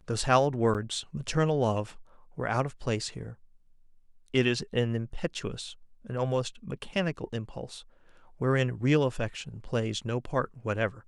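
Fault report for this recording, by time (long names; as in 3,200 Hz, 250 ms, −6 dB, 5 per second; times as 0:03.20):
0:00.74–0:00.75: drop-out 7.7 ms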